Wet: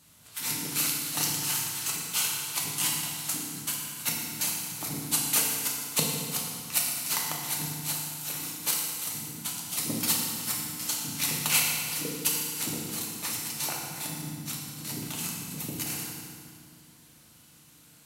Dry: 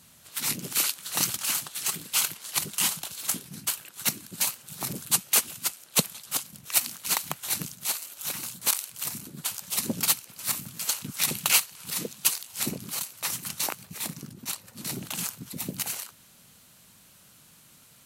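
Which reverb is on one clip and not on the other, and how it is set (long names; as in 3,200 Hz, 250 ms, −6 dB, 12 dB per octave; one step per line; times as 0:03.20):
feedback delay network reverb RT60 2.1 s, low-frequency decay 1.5×, high-frequency decay 0.85×, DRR −3 dB
level −5.5 dB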